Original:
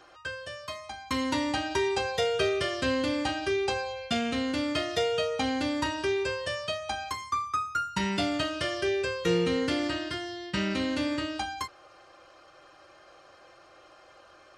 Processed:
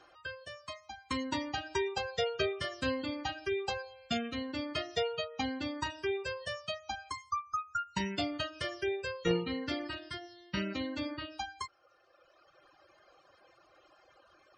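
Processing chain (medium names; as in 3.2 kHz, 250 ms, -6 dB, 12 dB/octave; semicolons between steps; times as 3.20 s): Chebyshev shaper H 3 -15 dB, 5 -35 dB, 6 -37 dB, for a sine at -14 dBFS; spectral gate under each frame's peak -25 dB strong; reverb removal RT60 1.7 s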